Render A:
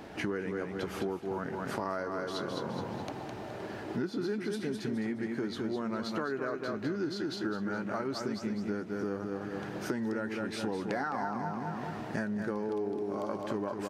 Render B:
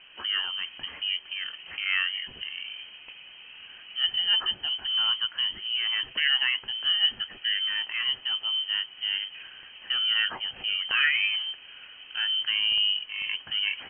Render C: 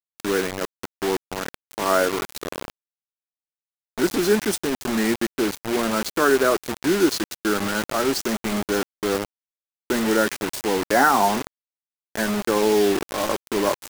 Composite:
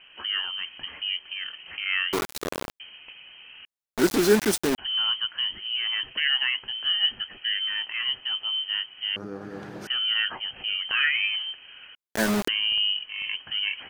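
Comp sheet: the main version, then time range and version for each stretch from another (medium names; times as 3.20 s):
B
2.13–2.80 s: from C
3.65–4.78 s: from C
9.16–9.87 s: from A
11.95–12.48 s: from C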